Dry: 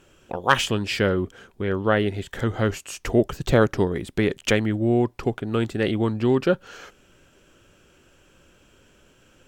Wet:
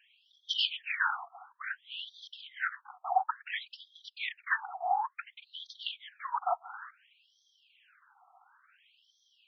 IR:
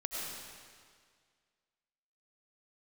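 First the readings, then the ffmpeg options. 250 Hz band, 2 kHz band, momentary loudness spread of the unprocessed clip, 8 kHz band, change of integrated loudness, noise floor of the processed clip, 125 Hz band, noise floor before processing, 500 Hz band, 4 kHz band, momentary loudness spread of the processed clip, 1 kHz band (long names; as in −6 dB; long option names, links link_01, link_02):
below −40 dB, −6.5 dB, 8 LU, below −20 dB, −11.5 dB, −73 dBFS, below −40 dB, −58 dBFS, −24.0 dB, −3.5 dB, 16 LU, −4.0 dB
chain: -af "afftfilt=real='hypot(re,im)*cos(2*PI*random(0))':imag='hypot(re,im)*sin(2*PI*random(1))':win_size=512:overlap=0.75,highpass=frequency=750:width_type=q:width=4.9,afftfilt=real='re*between(b*sr/1024,950*pow(4500/950,0.5+0.5*sin(2*PI*0.57*pts/sr))/1.41,950*pow(4500/950,0.5+0.5*sin(2*PI*0.57*pts/sr))*1.41)':imag='im*between(b*sr/1024,950*pow(4500/950,0.5+0.5*sin(2*PI*0.57*pts/sr))/1.41,950*pow(4500/950,0.5+0.5*sin(2*PI*0.57*pts/sr))*1.41)':win_size=1024:overlap=0.75,volume=4dB"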